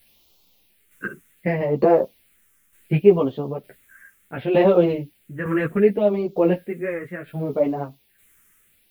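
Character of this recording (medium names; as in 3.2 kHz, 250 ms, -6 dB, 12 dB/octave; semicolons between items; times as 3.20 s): a quantiser's noise floor 10-bit, dither triangular; phasing stages 4, 0.68 Hz, lowest notch 730–1700 Hz; tremolo saw down 1.1 Hz, depth 55%; a shimmering, thickened sound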